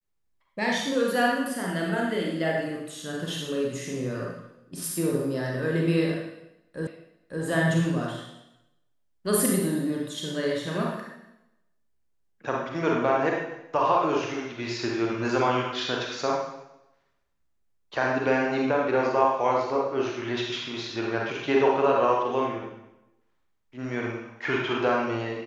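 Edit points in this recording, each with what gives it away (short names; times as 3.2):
6.87 repeat of the last 0.56 s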